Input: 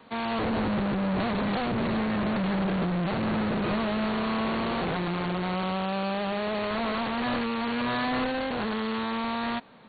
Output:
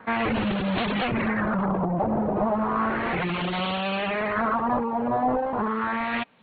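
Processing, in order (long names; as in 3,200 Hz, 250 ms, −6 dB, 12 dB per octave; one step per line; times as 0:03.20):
auto-filter low-pass sine 0.22 Hz 760–3,300 Hz
reverb reduction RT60 1.1 s
phase-vocoder stretch with locked phases 0.65×
level +5 dB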